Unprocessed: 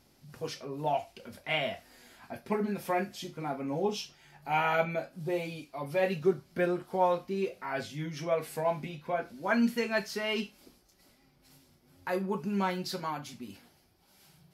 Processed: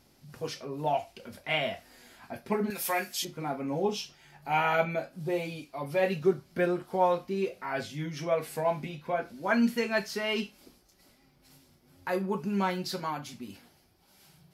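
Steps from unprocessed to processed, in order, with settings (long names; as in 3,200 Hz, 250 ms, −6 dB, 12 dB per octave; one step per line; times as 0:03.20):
0:02.70–0:03.25: spectral tilt +4 dB per octave
level +1.5 dB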